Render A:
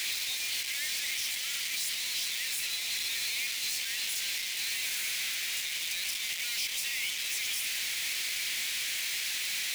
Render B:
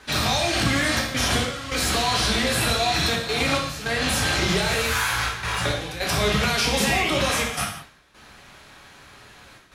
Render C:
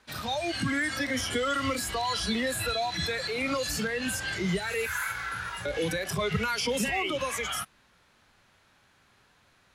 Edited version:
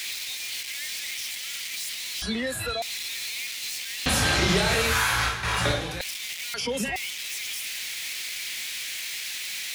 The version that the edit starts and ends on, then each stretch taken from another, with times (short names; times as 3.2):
A
2.22–2.82 from C
4.06–6.01 from B
6.54–6.96 from C